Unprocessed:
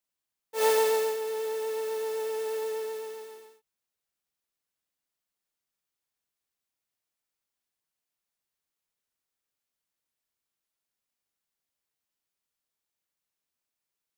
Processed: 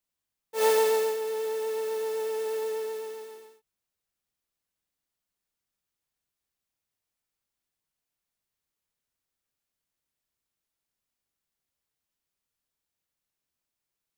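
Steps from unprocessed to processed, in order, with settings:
low-shelf EQ 190 Hz +8 dB

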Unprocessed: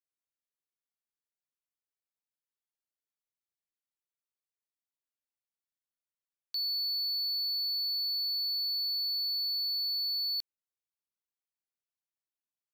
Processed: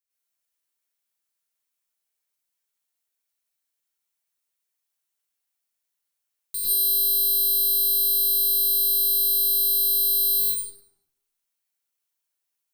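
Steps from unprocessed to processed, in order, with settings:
stylus tracing distortion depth 0.17 ms
spectral tilt +2.5 dB per octave
notch filter 4,900 Hz, Q 21
dense smooth reverb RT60 0.88 s, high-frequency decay 0.65×, pre-delay 85 ms, DRR −9 dB
level −2.5 dB

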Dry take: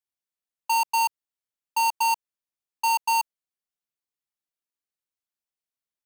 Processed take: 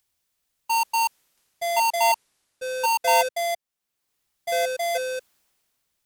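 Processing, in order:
upward compression, threshold −39 dBFS
delay with pitch and tempo change per echo 688 ms, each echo −5 semitones, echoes 2
multiband upward and downward expander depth 40%

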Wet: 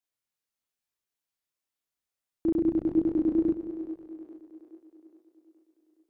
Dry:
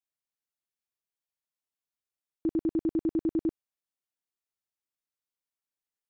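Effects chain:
echo with a time of its own for lows and highs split 330 Hz, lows 180 ms, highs 419 ms, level −10.5 dB
multi-voice chorus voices 2, 1 Hz, delay 29 ms, depth 4.3 ms
level +6 dB

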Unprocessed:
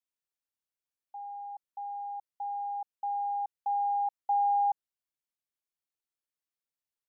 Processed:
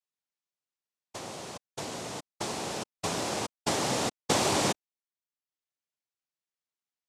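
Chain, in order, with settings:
transient designer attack +4 dB, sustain −5 dB
cochlear-implant simulation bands 2
MP3 112 kbit/s 32,000 Hz

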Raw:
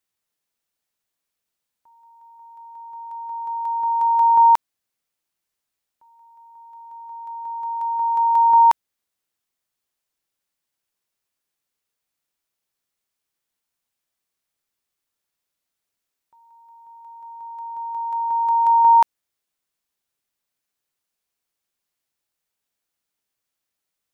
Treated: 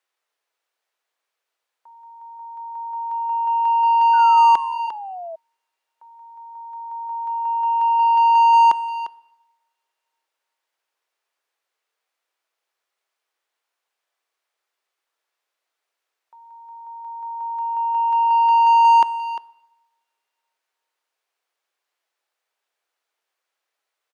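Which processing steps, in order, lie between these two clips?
high-pass filter 370 Hz 24 dB per octave
far-end echo of a speakerphone 350 ms, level −16 dB
mid-hump overdrive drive 16 dB, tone 1,500 Hz, clips at −7.5 dBFS
coupled-rooms reverb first 0.86 s, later 3 s, from −27 dB, DRR 18 dB
sound drawn into the spectrogram fall, 0:04.13–0:05.36, 640–1,500 Hz −32 dBFS

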